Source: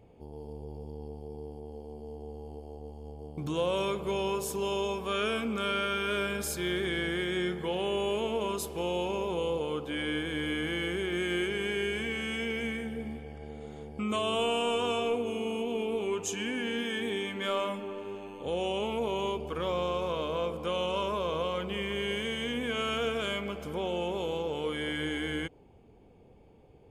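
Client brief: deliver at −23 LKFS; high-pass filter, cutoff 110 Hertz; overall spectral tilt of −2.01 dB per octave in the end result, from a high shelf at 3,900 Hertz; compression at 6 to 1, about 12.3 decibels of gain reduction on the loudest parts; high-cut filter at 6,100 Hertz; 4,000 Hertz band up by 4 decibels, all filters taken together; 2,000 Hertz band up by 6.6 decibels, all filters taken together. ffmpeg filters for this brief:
ffmpeg -i in.wav -af "highpass=110,lowpass=6100,equalizer=frequency=2000:width_type=o:gain=8.5,highshelf=frequency=3900:gain=-6,equalizer=frequency=4000:width_type=o:gain=5,acompressor=threshold=-38dB:ratio=6,volume=17.5dB" out.wav

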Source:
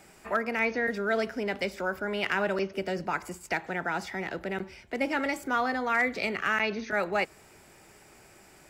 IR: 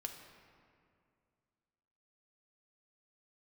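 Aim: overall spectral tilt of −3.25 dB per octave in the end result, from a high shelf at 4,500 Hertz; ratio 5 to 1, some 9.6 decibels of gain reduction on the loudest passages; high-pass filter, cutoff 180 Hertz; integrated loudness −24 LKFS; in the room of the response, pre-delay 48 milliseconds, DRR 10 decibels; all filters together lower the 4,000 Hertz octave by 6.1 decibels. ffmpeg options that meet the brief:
-filter_complex "[0:a]highpass=180,equalizer=frequency=4000:width_type=o:gain=-6.5,highshelf=frequency=4500:gain=-6,acompressor=threshold=-34dB:ratio=5,asplit=2[link_01][link_02];[1:a]atrim=start_sample=2205,adelay=48[link_03];[link_02][link_03]afir=irnorm=-1:irlink=0,volume=-8dB[link_04];[link_01][link_04]amix=inputs=2:normalize=0,volume=13.5dB"

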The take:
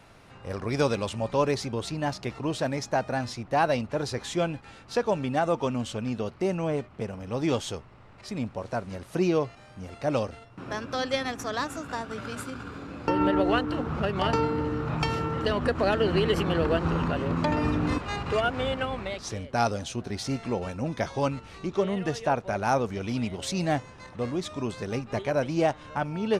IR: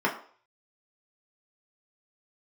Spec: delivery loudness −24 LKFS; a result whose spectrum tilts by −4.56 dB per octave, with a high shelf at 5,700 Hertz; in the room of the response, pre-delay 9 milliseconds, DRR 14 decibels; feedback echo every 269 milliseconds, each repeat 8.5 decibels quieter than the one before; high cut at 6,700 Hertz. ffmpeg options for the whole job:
-filter_complex "[0:a]lowpass=6700,highshelf=frequency=5700:gain=9,aecho=1:1:269|538|807|1076:0.376|0.143|0.0543|0.0206,asplit=2[link_01][link_02];[1:a]atrim=start_sample=2205,adelay=9[link_03];[link_02][link_03]afir=irnorm=-1:irlink=0,volume=-27dB[link_04];[link_01][link_04]amix=inputs=2:normalize=0,volume=4dB"

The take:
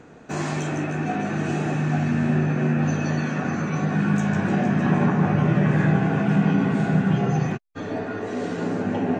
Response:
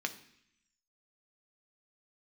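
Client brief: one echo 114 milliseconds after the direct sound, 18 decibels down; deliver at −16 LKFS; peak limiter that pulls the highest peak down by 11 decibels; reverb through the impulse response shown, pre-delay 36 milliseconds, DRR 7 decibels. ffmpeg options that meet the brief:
-filter_complex "[0:a]alimiter=limit=-19dB:level=0:latency=1,aecho=1:1:114:0.126,asplit=2[link_01][link_02];[1:a]atrim=start_sample=2205,adelay=36[link_03];[link_02][link_03]afir=irnorm=-1:irlink=0,volume=-10dB[link_04];[link_01][link_04]amix=inputs=2:normalize=0,volume=10.5dB"

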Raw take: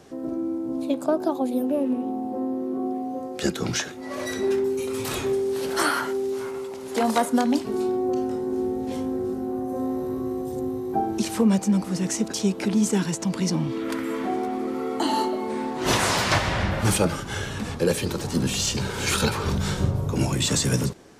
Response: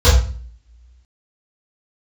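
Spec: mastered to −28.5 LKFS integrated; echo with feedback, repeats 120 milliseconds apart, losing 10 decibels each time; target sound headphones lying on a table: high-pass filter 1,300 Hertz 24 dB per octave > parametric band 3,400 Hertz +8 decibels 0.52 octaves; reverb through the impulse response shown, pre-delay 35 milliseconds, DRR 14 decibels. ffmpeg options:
-filter_complex "[0:a]aecho=1:1:120|240|360|480:0.316|0.101|0.0324|0.0104,asplit=2[link_01][link_02];[1:a]atrim=start_sample=2205,adelay=35[link_03];[link_02][link_03]afir=irnorm=-1:irlink=0,volume=-38.5dB[link_04];[link_01][link_04]amix=inputs=2:normalize=0,highpass=frequency=1300:width=0.5412,highpass=frequency=1300:width=1.3066,equalizer=frequency=3400:width_type=o:width=0.52:gain=8,volume=-1.5dB"

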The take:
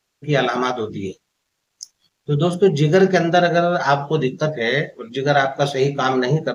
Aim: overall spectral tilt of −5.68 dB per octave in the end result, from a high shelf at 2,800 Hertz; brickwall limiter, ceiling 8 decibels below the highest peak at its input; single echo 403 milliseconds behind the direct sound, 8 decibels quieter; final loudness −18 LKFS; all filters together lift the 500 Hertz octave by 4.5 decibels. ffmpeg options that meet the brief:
ffmpeg -i in.wav -af "equalizer=frequency=500:width_type=o:gain=6,highshelf=frequency=2800:gain=-5.5,alimiter=limit=-8dB:level=0:latency=1,aecho=1:1:403:0.398" out.wav

